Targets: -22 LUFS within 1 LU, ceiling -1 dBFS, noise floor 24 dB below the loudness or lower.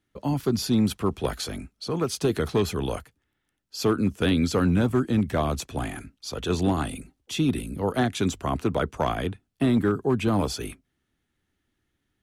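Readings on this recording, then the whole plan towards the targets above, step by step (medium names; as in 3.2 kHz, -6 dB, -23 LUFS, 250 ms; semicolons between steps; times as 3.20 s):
clipped samples 0.5%; clipping level -14.5 dBFS; loudness -26.0 LUFS; peak level -14.5 dBFS; loudness target -22.0 LUFS
-> clip repair -14.5 dBFS; trim +4 dB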